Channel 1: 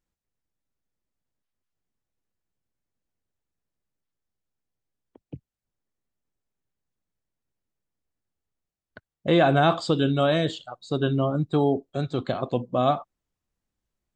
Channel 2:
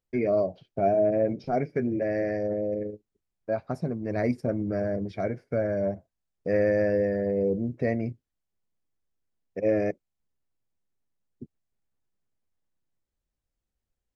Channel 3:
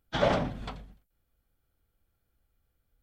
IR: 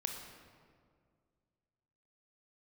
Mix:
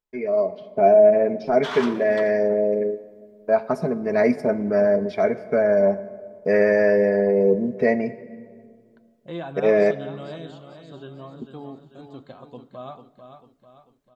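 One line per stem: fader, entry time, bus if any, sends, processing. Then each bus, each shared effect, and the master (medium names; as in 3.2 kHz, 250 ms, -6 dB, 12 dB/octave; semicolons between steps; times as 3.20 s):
-13.0 dB, 0.00 s, send -17 dB, echo send -7.5 dB, flange 0.25 Hz, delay 3.2 ms, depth 3.9 ms, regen +59%
-6.0 dB, 0.00 s, send -8 dB, no echo send, tone controls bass -10 dB, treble -3 dB; comb 4.7 ms, depth 64%; level rider gain up to 12.5 dB
-3.0 dB, 1.50 s, send -10.5 dB, no echo send, steep high-pass 990 Hz; waveshaping leveller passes 1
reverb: on, RT60 2.0 s, pre-delay 22 ms
echo: feedback delay 444 ms, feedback 48%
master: peaking EQ 960 Hz +8 dB 0.22 oct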